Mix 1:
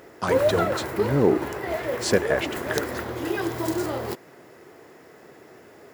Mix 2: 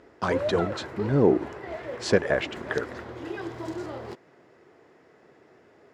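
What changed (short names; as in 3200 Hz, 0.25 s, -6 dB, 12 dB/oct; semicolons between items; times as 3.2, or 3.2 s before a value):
background -7.5 dB; master: add air absorption 93 m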